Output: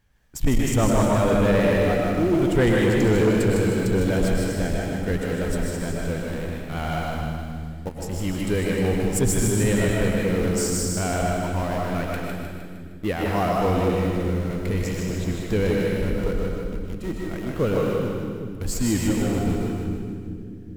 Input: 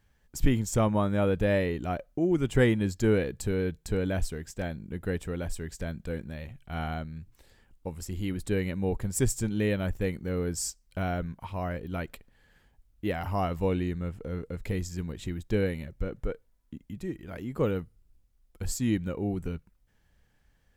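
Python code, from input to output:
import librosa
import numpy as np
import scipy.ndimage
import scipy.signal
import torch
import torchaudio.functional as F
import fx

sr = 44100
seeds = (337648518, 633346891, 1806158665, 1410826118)

p1 = np.where(np.abs(x) >= 10.0 ** (-31.5 / 20.0), x, 0.0)
p2 = x + (p1 * 10.0 ** (-5.5 / 20.0))
p3 = fx.rev_freeverb(p2, sr, rt60_s=1.3, hf_ratio=1.0, predelay_ms=80, drr_db=-0.5)
p4 = fx.vibrato(p3, sr, rate_hz=8.9, depth_cents=28.0)
p5 = p4 + fx.echo_split(p4, sr, split_hz=380.0, low_ms=404, high_ms=154, feedback_pct=52, wet_db=-5.5, dry=0)
p6 = 10.0 ** (-14.0 / 20.0) * np.tanh(p5 / 10.0 ** (-14.0 / 20.0))
y = p6 * 10.0 ** (1.5 / 20.0)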